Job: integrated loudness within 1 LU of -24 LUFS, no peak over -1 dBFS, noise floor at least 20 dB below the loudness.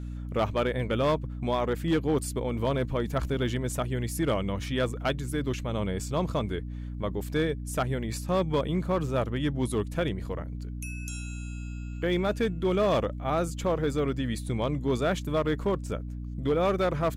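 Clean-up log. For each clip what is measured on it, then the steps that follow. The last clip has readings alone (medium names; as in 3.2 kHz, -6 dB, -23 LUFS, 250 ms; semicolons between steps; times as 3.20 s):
clipped samples 0.9%; clipping level -19.0 dBFS; hum 60 Hz; highest harmonic 300 Hz; hum level -34 dBFS; loudness -29.5 LUFS; peak level -19.0 dBFS; loudness target -24.0 LUFS
-> clip repair -19 dBFS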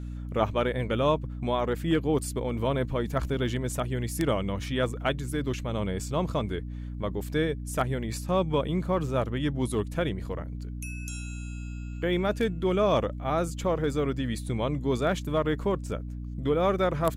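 clipped samples 0.0%; hum 60 Hz; highest harmonic 300 Hz; hum level -34 dBFS
-> hum notches 60/120/180/240/300 Hz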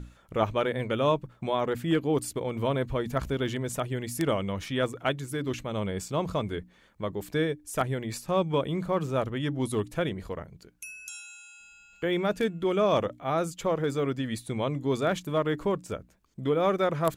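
hum not found; loudness -29.5 LUFS; peak level -9.5 dBFS; loudness target -24.0 LUFS
-> trim +5.5 dB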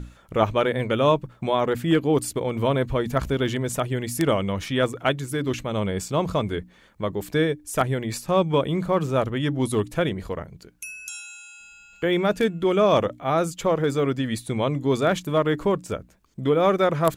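loudness -24.0 LUFS; peak level -4.0 dBFS; noise floor -54 dBFS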